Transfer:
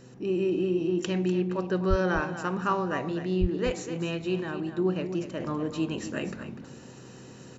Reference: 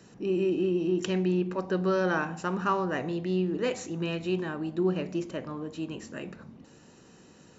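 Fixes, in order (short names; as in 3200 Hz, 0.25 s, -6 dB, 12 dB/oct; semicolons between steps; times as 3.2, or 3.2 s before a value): de-hum 126.9 Hz, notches 4; 1.89–2.01 HPF 140 Hz 24 dB/oct; 3.4–3.52 HPF 140 Hz 24 dB/oct; inverse comb 0.247 s -11 dB; gain 0 dB, from 5.4 s -6 dB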